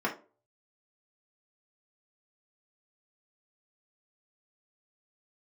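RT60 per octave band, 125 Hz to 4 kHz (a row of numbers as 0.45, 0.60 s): 0.45, 0.40, 0.40, 0.30, 0.25, 0.20 s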